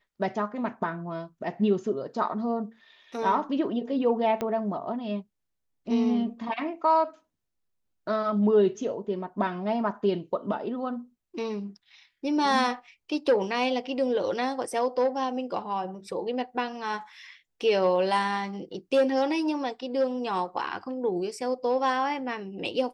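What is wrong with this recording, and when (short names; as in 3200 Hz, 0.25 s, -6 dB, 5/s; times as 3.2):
4.41 pop -16 dBFS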